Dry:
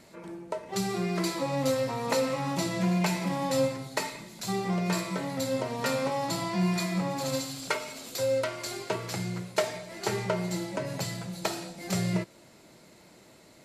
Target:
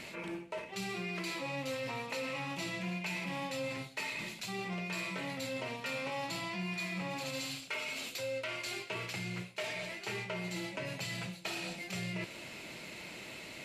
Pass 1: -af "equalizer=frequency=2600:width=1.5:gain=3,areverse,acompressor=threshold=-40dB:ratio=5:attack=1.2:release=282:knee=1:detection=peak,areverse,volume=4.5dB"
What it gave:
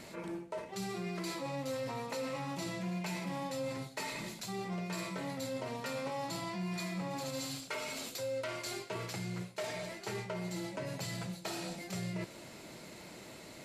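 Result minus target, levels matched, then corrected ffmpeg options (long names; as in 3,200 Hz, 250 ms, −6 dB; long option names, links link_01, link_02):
2,000 Hz band −5.0 dB
-af "equalizer=frequency=2600:width=1.5:gain=15,areverse,acompressor=threshold=-40dB:ratio=5:attack=1.2:release=282:knee=1:detection=peak,areverse,volume=4.5dB"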